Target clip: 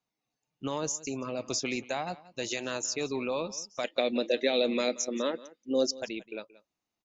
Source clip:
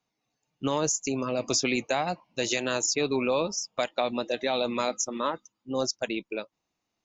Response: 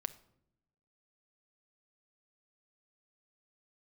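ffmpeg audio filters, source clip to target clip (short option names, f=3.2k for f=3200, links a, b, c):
-filter_complex "[0:a]asettb=1/sr,asplit=3[a][b][c];[a]atrim=end=3.844[d];[b]atrim=start=3.84:end=5.99,asetpts=PTS-STARTPTS,afade=t=in:d=0.004:c=qsin,afade=t=out:st=2.146:d=0.004:c=qsin,equalizer=f=125:t=o:w=1:g=-9,equalizer=f=250:t=o:w=1:g=8,equalizer=f=500:t=o:w=1:g=10,equalizer=f=1k:t=o:w=1:g=-10,equalizer=f=2k:t=o:w=1:g=8,equalizer=f=4k:t=o:w=1:g=6[e];[c]atrim=start=5.986[f];[d][e]acrossfade=d=0.004:c1=hsin:c2=qsin[g];[g][f]acrossfade=d=0.004:c1=qsin:c2=hsin,aecho=1:1:178:0.112,volume=-6dB"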